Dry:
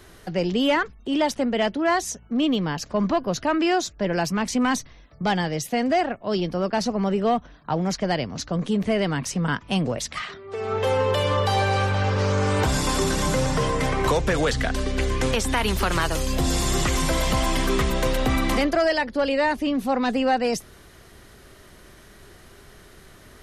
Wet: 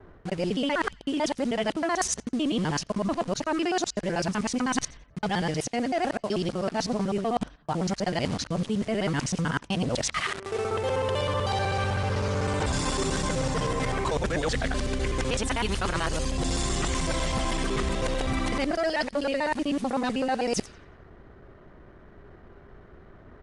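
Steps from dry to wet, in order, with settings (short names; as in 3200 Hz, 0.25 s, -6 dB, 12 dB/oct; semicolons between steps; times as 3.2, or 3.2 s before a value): local time reversal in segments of 63 ms; thin delay 89 ms, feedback 66%, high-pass 3200 Hz, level -19 dB; low-pass opened by the level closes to 1000 Hz, open at -22.5 dBFS; in parallel at +2 dB: bit-crush 6-bit; on the sum: downsampling 22050 Hz; reverse; compressor 6:1, threshold -25 dBFS, peak gain reduction 14 dB; reverse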